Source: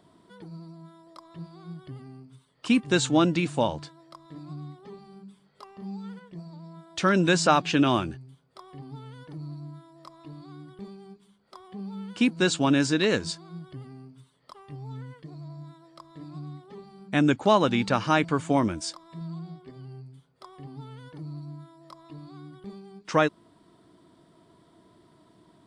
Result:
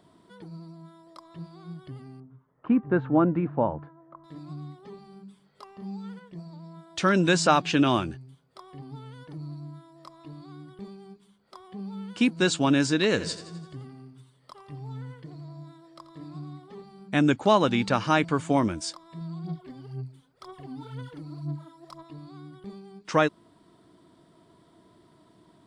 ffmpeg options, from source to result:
-filter_complex "[0:a]asettb=1/sr,asplit=3[a][b][c];[a]atrim=end=2.204[d];[b]atrim=start=2.2:end=4.24,asetpts=PTS-STARTPTS,afade=t=in:d=0.004:c=qsin,afade=t=out:st=2.036:d=0.004:c=qsin,lowpass=f=1.5k:w=0.5412,lowpass=f=1.5k:w=1.3066[e];[c]atrim=start=4.236[f];[d][e]acrossfade=d=0.004:c1=hsin:c2=qsin[g];[g][f]acrossfade=d=0.004:c1=qsin:c2=hsin,asettb=1/sr,asplit=3[h][i][j];[h]atrim=end=13.074[k];[i]atrim=start=13.07:end=16.82,asetpts=PTS-STARTPTS,afade=t=in:d=0.004:c=qsin,afade=t=out:st=3.746:d=0.004:c=qsin,aecho=1:1:85|170|255|340|425|510:0.224|0.121|0.0653|0.0353|0.019|0.0103,atrim=end_sample=165375[l];[j]atrim=start=16.816[m];[k][l]acrossfade=d=0.004:c1=hsin:c2=qsin[n];[n][m]acrossfade=d=0.004:c1=qsin:c2=hsin,asplit=3[o][p][q];[o]afade=t=out:st=19.43:d=0.02[r];[p]aphaser=in_gain=1:out_gain=1:delay=4:decay=0.65:speed=2:type=sinusoidal,afade=t=in:st=19.43:d=0.02,afade=t=out:st=22.02:d=0.02[s];[q]afade=t=in:st=22.02:d=0.02[t];[r][s][t]amix=inputs=3:normalize=0"

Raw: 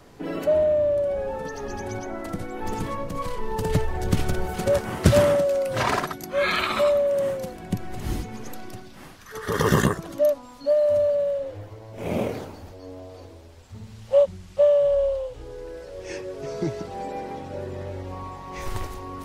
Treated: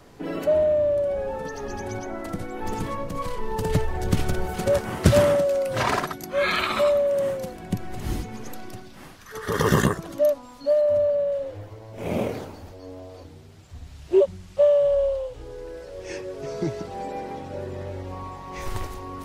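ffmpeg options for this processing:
-filter_complex "[0:a]asettb=1/sr,asplit=3[a][b][c];[a]atrim=end=10.814[d];[b]atrim=start=10.81:end=11.32,asetpts=PTS-STARTPTS,afade=t=in:d=0.004:c=qsin,afade=t=out:st=0.506:d=0.004:c=qsin,highshelf=f=3.4k:g=-8[e];[c]atrim=start=11.316[f];[d][e]acrossfade=d=0.004:c1=hsin:c2=qsin[g];[g][f]acrossfade=d=0.004:c1=qsin:c2=hsin,asplit=3[h][i][j];[h]afade=t=out:st=13.23:d=0.02[k];[i]afreqshift=-180,afade=t=in:st=13.23:d=0.02,afade=t=out:st=14.2:d=0.02[l];[j]afade=t=in:st=14.2:d=0.02[m];[k][l][m]amix=inputs=3:normalize=0"

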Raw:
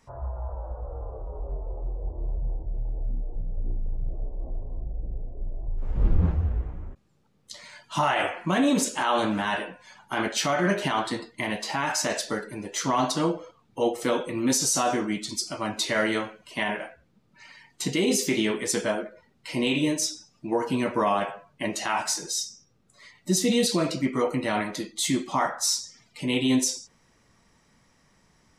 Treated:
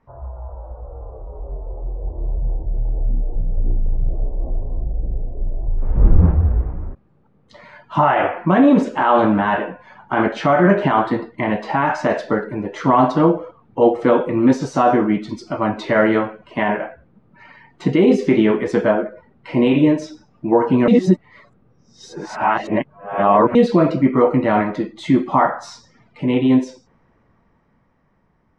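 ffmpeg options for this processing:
-filter_complex "[0:a]asplit=3[a][b][c];[a]atrim=end=20.882[d];[b]atrim=start=20.878:end=23.552,asetpts=PTS-STARTPTS,areverse[e];[c]atrim=start=23.548[f];[d][e]acrossfade=d=0.004:c1=hsin:c2=hsin[g];[g][f]acrossfade=d=0.004:c1=hsin:c2=hsin,lowpass=1.4k,dynaudnorm=f=450:g=11:m=11dB,volume=1dB"

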